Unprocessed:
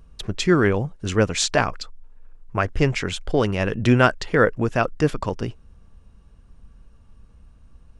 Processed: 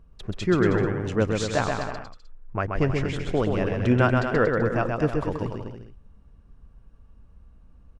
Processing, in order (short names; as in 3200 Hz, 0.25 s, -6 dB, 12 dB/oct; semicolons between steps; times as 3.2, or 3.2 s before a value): high shelf 2600 Hz -11 dB; bouncing-ball echo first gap 0.13 s, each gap 0.8×, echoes 5; gain -4 dB